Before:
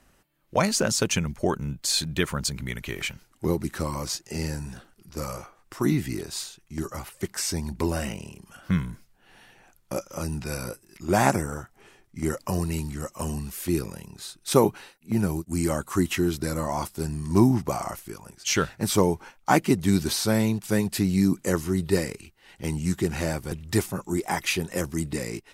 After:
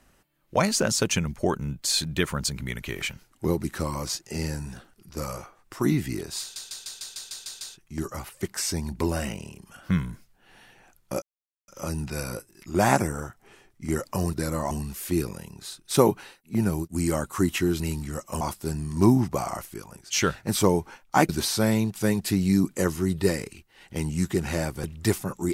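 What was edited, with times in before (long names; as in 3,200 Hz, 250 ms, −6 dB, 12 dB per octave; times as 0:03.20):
0:06.41: stutter 0.15 s, 9 plays
0:10.02: splice in silence 0.46 s
0:12.67–0:13.28: swap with 0:16.37–0:16.75
0:19.63–0:19.97: remove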